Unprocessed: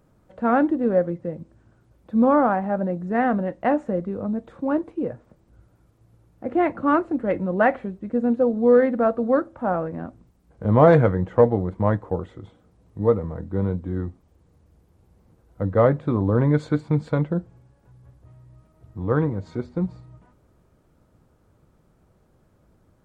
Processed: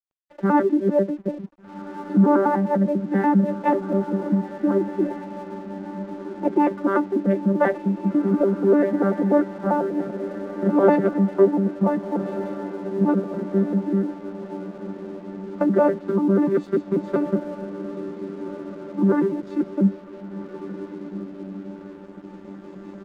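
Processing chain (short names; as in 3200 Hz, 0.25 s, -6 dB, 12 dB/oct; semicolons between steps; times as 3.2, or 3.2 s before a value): arpeggiated vocoder bare fifth, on G3, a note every 98 ms; recorder AGC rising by 6.5 dB/s; HPF 230 Hz 12 dB/oct; comb 5.7 ms, depth 65%; in parallel at -1.5 dB: compressor, threshold -29 dBFS, peak gain reduction 16 dB; on the sum: diffused feedback echo 1.553 s, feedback 53%, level -11 dB; crossover distortion -48.5 dBFS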